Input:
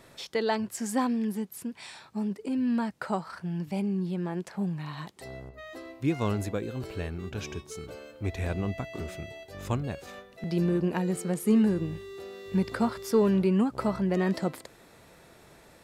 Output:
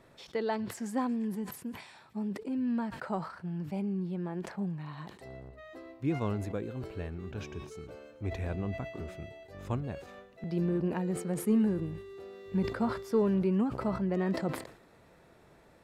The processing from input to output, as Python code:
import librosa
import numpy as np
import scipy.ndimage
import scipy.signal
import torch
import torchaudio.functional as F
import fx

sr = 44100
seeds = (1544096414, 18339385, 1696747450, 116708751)

p1 = fx.high_shelf(x, sr, hz=2900.0, db=-10.5)
p2 = p1 + fx.echo_wet_highpass(p1, sr, ms=115, feedback_pct=78, hz=1800.0, wet_db=-22.5, dry=0)
p3 = fx.sustainer(p2, sr, db_per_s=96.0)
y = p3 * librosa.db_to_amplitude(-4.0)